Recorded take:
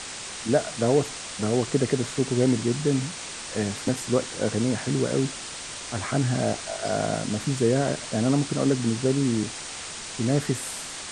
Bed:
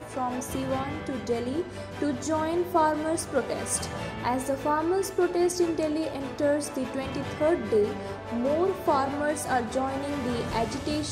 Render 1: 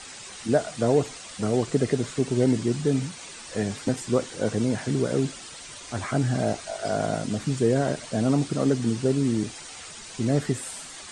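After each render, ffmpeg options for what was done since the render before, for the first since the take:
ffmpeg -i in.wav -af "afftdn=noise_reduction=9:noise_floor=-37" out.wav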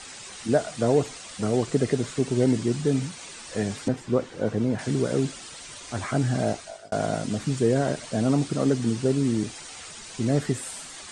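ffmpeg -i in.wav -filter_complex "[0:a]asettb=1/sr,asplit=3[link_01][link_02][link_03];[link_01]atrim=end=3.884[link_04];[link_02]atrim=start=3.88:end=4.79,asetpts=PTS-STARTPTS,afade=type=in:duration=0.004:curve=qsin,afade=type=out:start_time=0.906:duration=0.004:curve=qsin,lowpass=frequency=1800:poles=1[link_05];[link_03]atrim=start=4.786[link_06];[link_04][link_05]acrossfade=duration=0.004:curve1=hsin:curve2=qsin[link_07];[link_07][link_06]acrossfade=duration=0.004:curve1=qsin:curve2=hsin,asplit=2[link_08][link_09];[link_08]atrim=end=6.92,asetpts=PTS-STARTPTS,afade=type=out:start_time=6.49:duration=0.43[link_10];[link_09]atrim=start=6.92,asetpts=PTS-STARTPTS,afade=type=in:duration=0.004:curve=hsin[link_11];[link_10][link_11]concat=n=2:v=0:a=1" out.wav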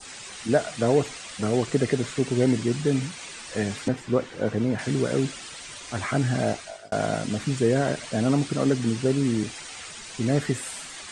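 ffmpeg -i in.wav -af "adynamicequalizer=threshold=0.00501:dfrequency=2200:dqfactor=0.87:tfrequency=2200:tqfactor=0.87:attack=5:release=100:ratio=0.375:range=2.5:mode=boostabove:tftype=bell" out.wav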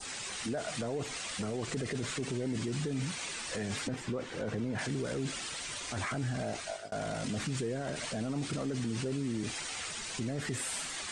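ffmpeg -i in.wav -af "acompressor=threshold=-23dB:ratio=6,alimiter=level_in=3dB:limit=-24dB:level=0:latency=1:release=13,volume=-3dB" out.wav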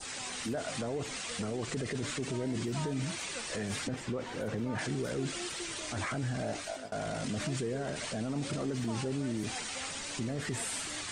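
ffmpeg -i in.wav -i bed.wav -filter_complex "[1:a]volume=-20.5dB[link_01];[0:a][link_01]amix=inputs=2:normalize=0" out.wav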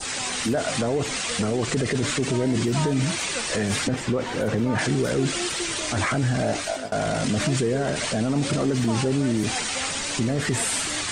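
ffmpeg -i in.wav -af "volume=11.5dB" out.wav

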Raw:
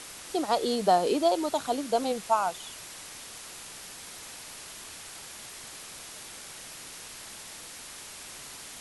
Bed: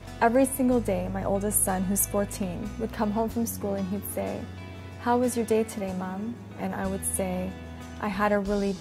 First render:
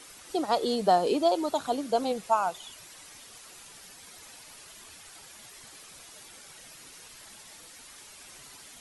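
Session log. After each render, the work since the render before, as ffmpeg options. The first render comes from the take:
ffmpeg -i in.wav -af "afftdn=noise_reduction=9:noise_floor=-45" out.wav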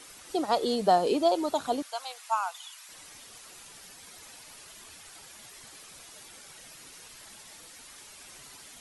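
ffmpeg -i in.wav -filter_complex "[0:a]asettb=1/sr,asplit=3[link_01][link_02][link_03];[link_01]atrim=end=1.824[link_04];[link_02]atrim=start=1.82:end=2.89,asetpts=PTS-STARTPTS,afade=type=in:duration=0.004:curve=qsin,afade=type=out:start_time=1.066:duration=0.004:curve=qsin,highpass=frequency=910:width=0.5412,highpass=frequency=910:width=1.3066[link_05];[link_03]atrim=start=2.886[link_06];[link_04][link_05]acrossfade=duration=0.004:curve1=hsin:curve2=qsin[link_07];[link_07][link_06]acrossfade=duration=0.004:curve1=qsin:curve2=hsin" out.wav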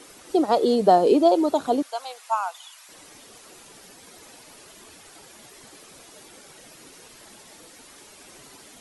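ffmpeg -i in.wav -af "equalizer=frequency=350:width_type=o:width=2.3:gain=10" out.wav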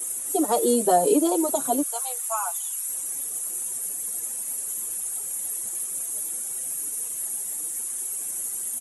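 ffmpeg -i in.wav -filter_complex "[0:a]acrossover=split=490[link_01][link_02];[link_02]aexciter=amount=14.4:drive=7.9:freq=7200[link_03];[link_01][link_03]amix=inputs=2:normalize=0,asplit=2[link_04][link_05];[link_05]adelay=5.9,afreqshift=1.4[link_06];[link_04][link_06]amix=inputs=2:normalize=1" out.wav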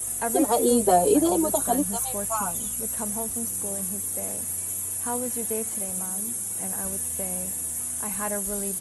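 ffmpeg -i in.wav -i bed.wav -filter_complex "[1:a]volume=-7.5dB[link_01];[0:a][link_01]amix=inputs=2:normalize=0" out.wav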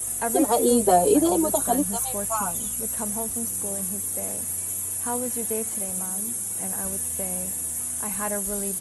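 ffmpeg -i in.wav -af "volume=1dB" out.wav

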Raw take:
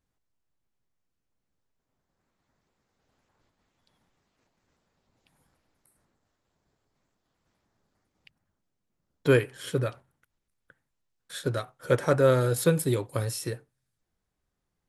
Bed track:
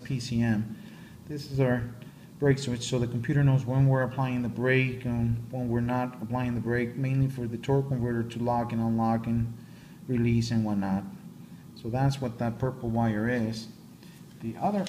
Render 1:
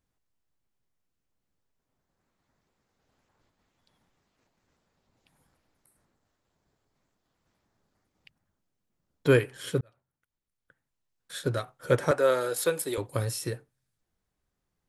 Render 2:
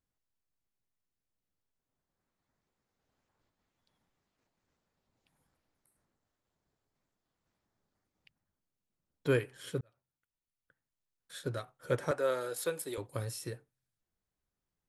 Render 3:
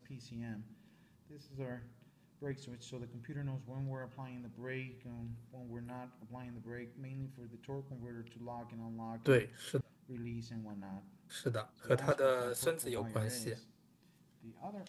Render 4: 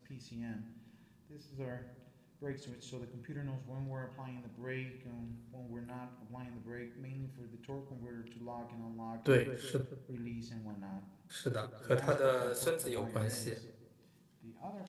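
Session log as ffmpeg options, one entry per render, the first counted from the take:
ffmpeg -i in.wav -filter_complex "[0:a]asettb=1/sr,asplit=3[link_01][link_02][link_03];[link_01]atrim=end=12.114[link_04];[link_02]atrim=start=12.11:end=12.98,asetpts=PTS-STARTPTS,afade=type=in:duration=0.004:curve=qsin,afade=type=out:start_time=0.866:duration=0.004:curve=qsin,highpass=440[link_05];[link_03]atrim=start=12.976[link_06];[link_04][link_05]acrossfade=duration=0.004:curve1=hsin:curve2=qsin[link_07];[link_07][link_06]acrossfade=duration=0.004:curve1=qsin:curve2=hsin,asplit=2[link_08][link_09];[link_08]atrim=end=9.81,asetpts=PTS-STARTPTS,afade=type=out:start_time=9.806:duration=0.004:curve=hsin[link_10];[link_09]atrim=start=9.81,asetpts=PTS-STARTPTS,afade=type=in:duration=1.59[link_11];[link_10][link_11]concat=n=2:v=0:a=1" out.wav
ffmpeg -i in.wav -af "volume=-8dB" out.wav
ffmpeg -i in.wav -i bed.wav -filter_complex "[1:a]volume=-19dB[link_01];[0:a][link_01]amix=inputs=2:normalize=0" out.wav
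ffmpeg -i in.wav -filter_complex "[0:a]asplit=2[link_01][link_02];[link_02]adelay=47,volume=-8dB[link_03];[link_01][link_03]amix=inputs=2:normalize=0,asplit=2[link_04][link_05];[link_05]adelay=172,lowpass=frequency=1100:poles=1,volume=-13.5dB,asplit=2[link_06][link_07];[link_07]adelay=172,lowpass=frequency=1100:poles=1,volume=0.47,asplit=2[link_08][link_09];[link_09]adelay=172,lowpass=frequency=1100:poles=1,volume=0.47,asplit=2[link_10][link_11];[link_11]adelay=172,lowpass=frequency=1100:poles=1,volume=0.47,asplit=2[link_12][link_13];[link_13]adelay=172,lowpass=frequency=1100:poles=1,volume=0.47[link_14];[link_04][link_06][link_08][link_10][link_12][link_14]amix=inputs=6:normalize=0" out.wav

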